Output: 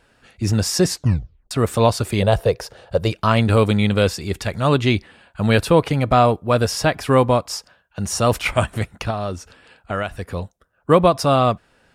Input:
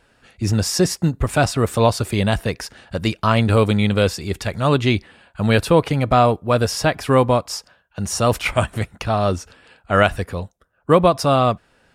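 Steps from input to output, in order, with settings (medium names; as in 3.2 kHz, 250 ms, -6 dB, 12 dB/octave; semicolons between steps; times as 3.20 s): 0.89 s: tape stop 0.62 s; 2.22–3.11 s: ten-band graphic EQ 125 Hz +4 dB, 250 Hz -11 dB, 500 Hz +12 dB, 2 kHz -6 dB, 8 kHz -4 dB; 9.10–10.32 s: compression 3:1, threshold -24 dBFS, peak gain reduction 11 dB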